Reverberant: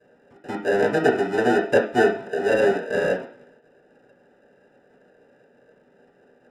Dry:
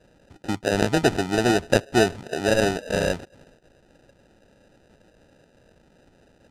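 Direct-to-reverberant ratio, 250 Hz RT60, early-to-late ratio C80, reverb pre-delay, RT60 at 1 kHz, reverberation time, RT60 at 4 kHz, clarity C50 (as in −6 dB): −6.0 dB, 0.35 s, 13.0 dB, 3 ms, 0.50 s, 0.45 s, 0.65 s, 8.5 dB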